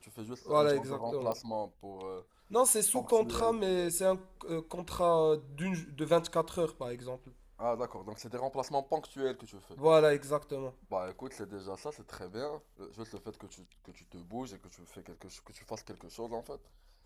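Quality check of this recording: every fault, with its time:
1.32 pop -23 dBFS

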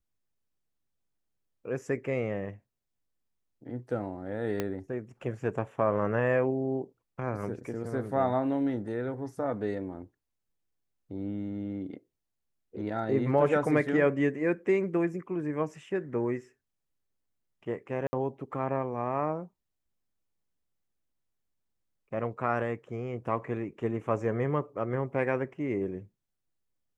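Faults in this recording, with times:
4.6 pop -16 dBFS
18.07–18.13 gap 60 ms

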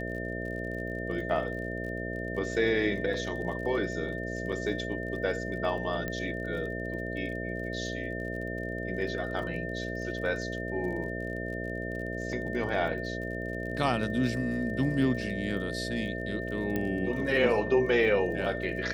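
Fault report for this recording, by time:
buzz 60 Hz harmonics 11 -36 dBFS
crackle 37/s -40 dBFS
tone 1800 Hz -38 dBFS
4.52–4.53 gap 5.3 ms
6.08 pop -20 dBFS
16.76 pop -18 dBFS

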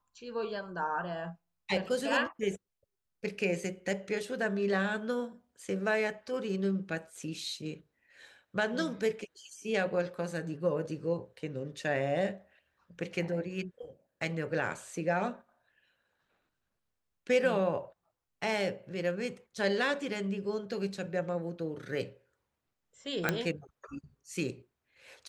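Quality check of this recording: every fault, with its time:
23.29 pop -12 dBFS

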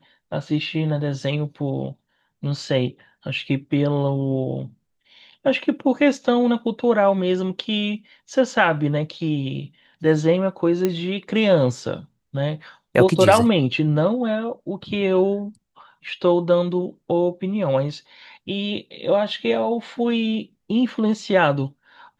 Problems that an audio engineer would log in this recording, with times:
10.85 pop -8 dBFS

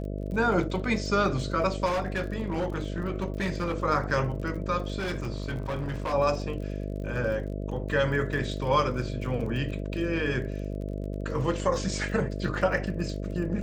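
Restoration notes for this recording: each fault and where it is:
buzz 50 Hz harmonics 13 -33 dBFS
crackle 30/s -37 dBFS
1.85–3.8 clipped -24 dBFS
4.98–6.14 clipped -27 dBFS

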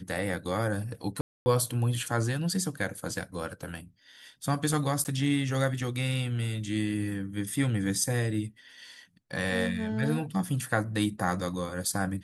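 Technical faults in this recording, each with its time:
1.21–1.46 gap 0.25 s
5.04–5.05 gap 9 ms

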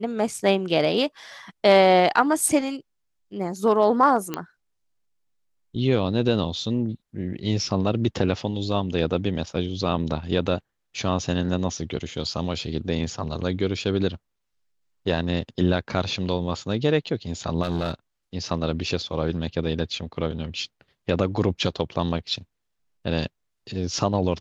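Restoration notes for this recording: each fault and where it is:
4.34 pop -12 dBFS
17.63–17.94 clipped -20 dBFS

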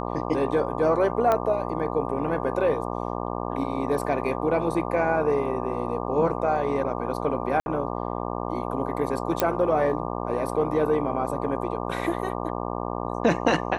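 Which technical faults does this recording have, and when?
buzz 60 Hz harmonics 20 -30 dBFS
1.32 pop -11 dBFS
7.6–7.66 gap 61 ms
9.4 pop -5 dBFS

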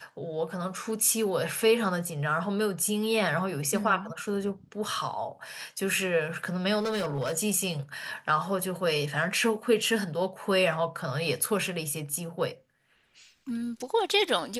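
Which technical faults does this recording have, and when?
6.79–7.38 clipped -25.5 dBFS

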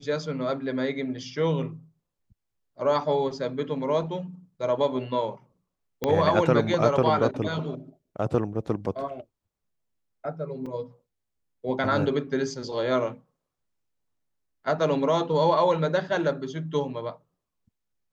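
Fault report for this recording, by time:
6.04 pop -12 dBFS
10.66 gap 4.4 ms

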